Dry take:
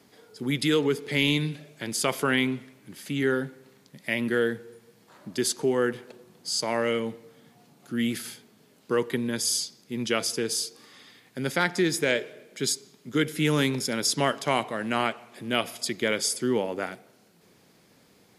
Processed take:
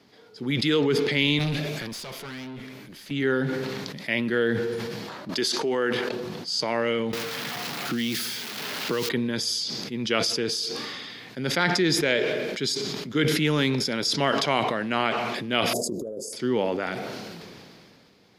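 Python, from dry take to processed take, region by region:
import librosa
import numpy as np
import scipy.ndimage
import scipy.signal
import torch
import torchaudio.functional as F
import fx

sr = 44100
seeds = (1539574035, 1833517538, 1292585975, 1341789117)

y = fx.chain(x, sr, fx.high_shelf(hz=10000.0, db=12.0),
    fx.tube_stage(drive_db=36.0, bias=0.35), at=(1.39, 3.11))
y = fx.chain(y, sr, fx.highpass(hz=390.0, slope=6),
    fx.env_flatten(amount_pct=70), at=(5.29, 6.09))
y = fx.chain(y, sr, fx.crossing_spikes(level_db=-23.5),
    fx.band_squash(depth_pct=100), at=(7.13, 9.09))
y = fx.chain(y, sr, fx.ellip_bandstop(low_hz=540.0, high_hz=7500.0, order=3, stop_db=60),
    fx.bass_treble(bass_db=-9, treble_db=-5),
    fx.over_compress(threshold_db=-35.0, ratio=-0.5), at=(15.73, 16.33))
y = fx.high_shelf_res(y, sr, hz=6400.0, db=-9.5, q=1.5)
y = fx.sustainer(y, sr, db_per_s=23.0)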